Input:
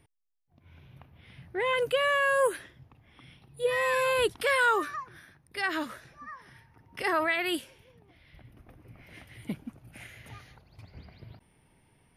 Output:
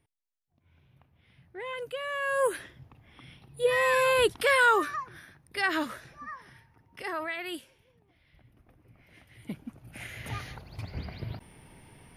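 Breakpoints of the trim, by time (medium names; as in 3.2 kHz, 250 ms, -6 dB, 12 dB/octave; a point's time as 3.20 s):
2.05 s -9.5 dB
2.60 s +2.5 dB
6.32 s +2.5 dB
7.06 s -7 dB
9.22 s -7 dB
9.96 s +3.5 dB
10.36 s +11 dB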